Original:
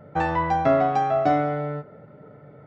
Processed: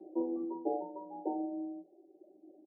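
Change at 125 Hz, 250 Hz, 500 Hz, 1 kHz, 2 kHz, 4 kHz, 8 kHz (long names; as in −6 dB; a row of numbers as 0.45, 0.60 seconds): below −35 dB, −8.0 dB, −16.0 dB, −21.5 dB, below −40 dB, below −40 dB, can't be measured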